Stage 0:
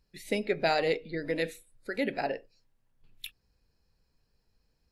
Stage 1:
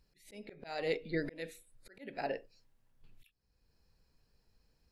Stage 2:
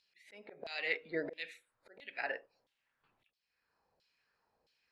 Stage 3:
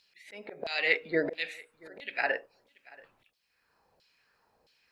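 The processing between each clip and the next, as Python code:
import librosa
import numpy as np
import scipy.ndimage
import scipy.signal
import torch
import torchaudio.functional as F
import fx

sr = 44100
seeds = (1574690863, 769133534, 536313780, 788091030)

y1 = fx.auto_swell(x, sr, attack_ms=559.0)
y1 = y1 * librosa.db_to_amplitude(1.0)
y2 = fx.filter_lfo_bandpass(y1, sr, shape='saw_down', hz=1.5, low_hz=580.0, high_hz=3700.0, q=2.1)
y2 = y2 * librosa.db_to_amplitude(9.5)
y3 = y2 + 10.0 ** (-23.5 / 20.0) * np.pad(y2, (int(682 * sr / 1000.0), 0))[:len(y2)]
y3 = y3 * librosa.db_to_amplitude(9.0)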